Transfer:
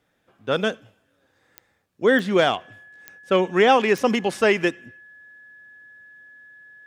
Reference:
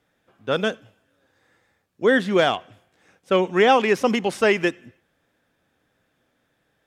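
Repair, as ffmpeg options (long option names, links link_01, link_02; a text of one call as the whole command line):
ffmpeg -i in.wav -af "adeclick=threshold=4,bandreject=frequency=1700:width=30" out.wav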